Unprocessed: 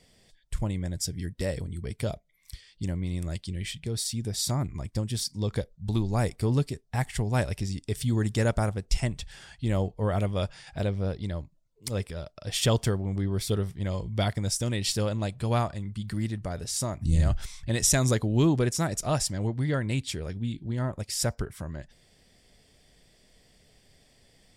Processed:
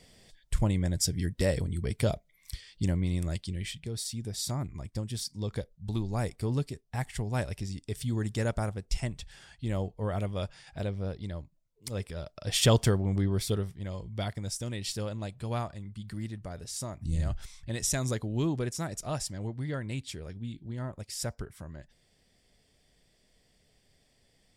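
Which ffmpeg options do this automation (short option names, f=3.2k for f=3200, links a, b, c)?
-af "volume=9.5dB,afade=t=out:st=2.83:d=1.08:silence=0.398107,afade=t=in:st=11.94:d=0.59:silence=0.473151,afade=t=out:st=13.16:d=0.65:silence=0.375837"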